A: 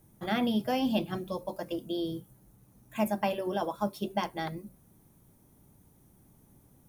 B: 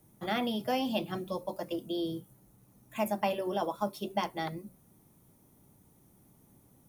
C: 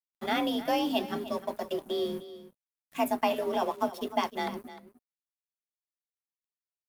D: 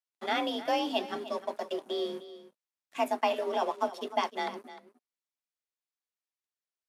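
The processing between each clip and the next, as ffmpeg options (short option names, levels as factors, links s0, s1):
-filter_complex "[0:a]lowshelf=f=69:g=-9.5,bandreject=f=1600:w=18,acrossover=split=390|1400|5500[s0][s1][s2][s3];[s0]alimiter=level_in=2.24:limit=0.0631:level=0:latency=1,volume=0.447[s4];[s4][s1][s2][s3]amix=inputs=4:normalize=0"
-af "afreqshift=39,aeval=exprs='sgn(val(0))*max(abs(val(0))-0.00299,0)':c=same,aecho=1:1:304:0.178,volume=1.5"
-af "highpass=340,lowpass=7900"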